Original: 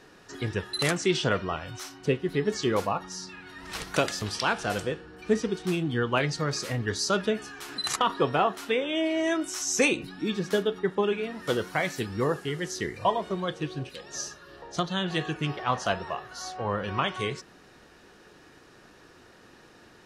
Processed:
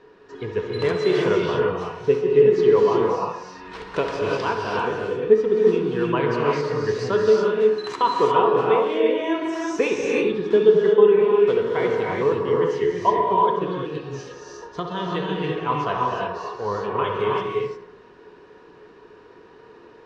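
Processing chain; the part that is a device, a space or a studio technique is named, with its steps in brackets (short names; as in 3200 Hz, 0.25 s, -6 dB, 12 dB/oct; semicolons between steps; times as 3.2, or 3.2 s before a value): inside a cardboard box (LPF 3500 Hz 12 dB/oct; small resonant body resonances 430/980 Hz, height 14 dB, ringing for 45 ms); tape echo 66 ms, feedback 65%, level -8.5 dB, low-pass 2300 Hz; non-linear reverb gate 0.38 s rising, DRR -1.5 dB; gain -3.5 dB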